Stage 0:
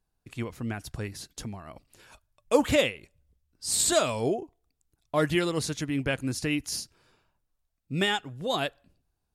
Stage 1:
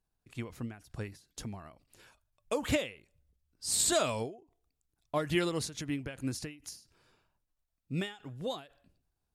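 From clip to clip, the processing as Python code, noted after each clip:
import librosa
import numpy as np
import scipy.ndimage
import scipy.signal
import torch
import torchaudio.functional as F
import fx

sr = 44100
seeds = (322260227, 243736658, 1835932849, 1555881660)

y = fx.end_taper(x, sr, db_per_s=140.0)
y = F.gain(torch.from_numpy(y), -3.5).numpy()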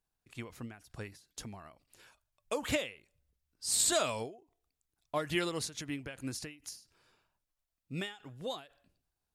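y = fx.low_shelf(x, sr, hz=450.0, db=-6.0)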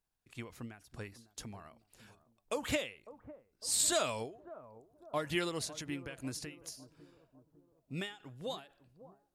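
y = fx.echo_bbd(x, sr, ms=552, stages=4096, feedback_pct=49, wet_db=-16)
y = F.gain(torch.from_numpy(y), -1.5).numpy()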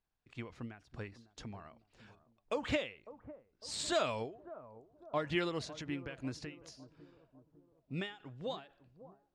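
y = fx.air_absorb(x, sr, metres=140.0)
y = F.gain(torch.from_numpy(y), 1.0).numpy()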